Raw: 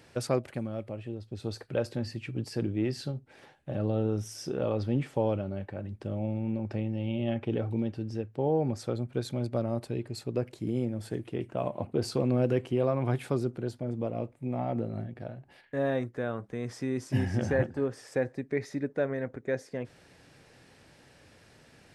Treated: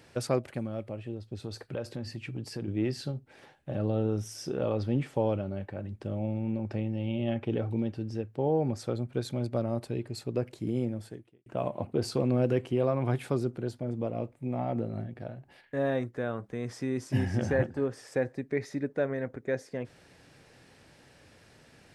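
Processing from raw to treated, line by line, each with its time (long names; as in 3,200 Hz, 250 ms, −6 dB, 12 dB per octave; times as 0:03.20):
0:01.35–0:02.68: downward compressor 2.5 to 1, threshold −33 dBFS
0:10.92–0:11.46: fade out quadratic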